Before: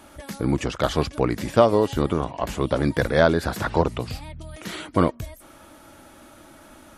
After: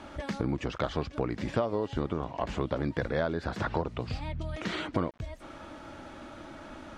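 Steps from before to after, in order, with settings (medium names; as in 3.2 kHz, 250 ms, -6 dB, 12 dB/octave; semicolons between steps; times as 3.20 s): compression 4:1, threshold -32 dBFS, peak gain reduction 18 dB; small samples zeroed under -56 dBFS; distance through air 130 m; trim +3.5 dB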